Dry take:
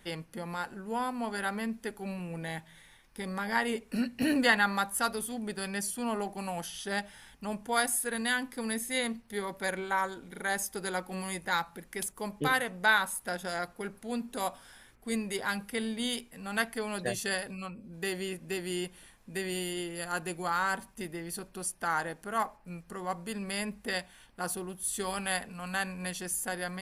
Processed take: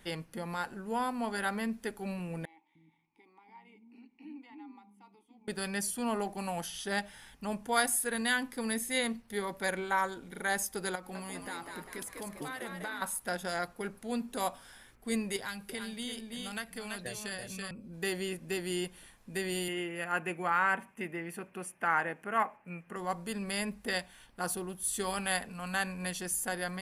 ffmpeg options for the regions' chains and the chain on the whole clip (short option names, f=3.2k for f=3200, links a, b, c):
-filter_complex "[0:a]asettb=1/sr,asplit=3[a][b][c];[a]atrim=end=2.454[d];[b]atrim=start=2.45:end=5.48,asetpts=PTS-STARTPTS,afade=t=in:d=0.004:c=qsin,afade=t=out:st=3.026:d=0.004:c=qsin,acrossover=split=290[e][f];[e]adelay=300[g];[g][f]amix=inputs=2:normalize=0,atrim=end_sample=133623,acompressor=threshold=-46dB:ratio=2:attack=3.2:release=140:knee=1:detection=peak,asplit=3[h][i][j];[h]bandpass=f=300:t=q:w=8,volume=0dB[k];[i]bandpass=f=870:t=q:w=8,volume=-6dB[l];[j]bandpass=f=2.24k:t=q:w=8,volume=-9dB[m];[k][l][m]amix=inputs=3:normalize=0[n];[c]atrim=start=5.476[o];[d][n]acrossfade=d=0.004:c1=hsin:c2=qsin[p];[p][o]acrossfade=d=0.004:c1=qsin:c2=hsin,asettb=1/sr,asplit=3[q][r][s];[q]atrim=end=10.954[t];[r]atrim=start=10.95:end=13.02,asetpts=PTS-STARTPTS,afade=t=in:d=0.004:c=qsin,afade=t=out:st=2.066:d=0.004:c=qsin,acompressor=threshold=-39dB:ratio=4:attack=3.2:release=140:knee=1:detection=peak,asplit=8[u][v][w][x][y][z][aa][ab];[v]adelay=200,afreqshift=76,volume=-5dB[ac];[w]adelay=400,afreqshift=152,volume=-10.4dB[ad];[x]adelay=600,afreqshift=228,volume=-15.7dB[ae];[y]adelay=800,afreqshift=304,volume=-21.1dB[af];[z]adelay=1000,afreqshift=380,volume=-26.4dB[ag];[aa]adelay=1200,afreqshift=456,volume=-31.8dB[ah];[ab]adelay=1400,afreqshift=532,volume=-37.1dB[ai];[u][ac][ad][ae][af][ag][ah][ai]amix=inputs=8:normalize=0,atrim=end_sample=91287[aj];[s]atrim=start=13.016[ak];[t][aj]acrossfade=d=0.004:c1=hsin:c2=qsin[al];[al][ak]acrossfade=d=0.004:c1=qsin:c2=hsin,asettb=1/sr,asplit=3[am][an][ao];[am]atrim=end=15.364[ap];[an]atrim=start=15.36:end=17.71,asetpts=PTS-STARTPTS,afade=t=in:d=0.004:c=qsin,afade=t=out:st=2.346:d=0.004:c=qsin,aecho=1:1:332:0.473,atrim=end_sample=103635,acrossover=split=140|2100[aq][ar][as];[aq]acompressor=threshold=-51dB:ratio=4[at];[ar]acompressor=threshold=-42dB:ratio=4[au];[as]acompressor=threshold=-41dB:ratio=4[av];[at][au][av]amix=inputs=3:normalize=0[aw];[ao]atrim=start=17.706[ax];[ap][aw]acrossfade=d=0.004:c1=hsin:c2=qsin[ay];[ay][ax]acrossfade=d=0.004:c1=qsin:c2=hsin,asettb=1/sr,asplit=3[az][ba][bb];[az]atrim=end=19.684[bc];[ba]atrim=start=19.68:end=22.96,asetpts=PTS-STARTPTS,afade=t=in:d=0.004:c=qsin,afade=t=out:st=3.276:d=0.004:c=qsin,highpass=140,highshelf=f=3.2k:t=q:w=3:g=-9[bd];[bb]atrim=start=22.956[be];[bc][bd]acrossfade=d=0.004:c1=hsin:c2=qsin[bf];[bf][be]acrossfade=d=0.004:c1=qsin:c2=hsin"